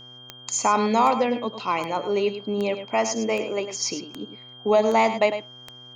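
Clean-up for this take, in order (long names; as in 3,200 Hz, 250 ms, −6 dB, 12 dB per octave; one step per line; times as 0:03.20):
click removal
hum removal 124.7 Hz, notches 13
notch filter 3,200 Hz, Q 30
echo removal 103 ms −10.5 dB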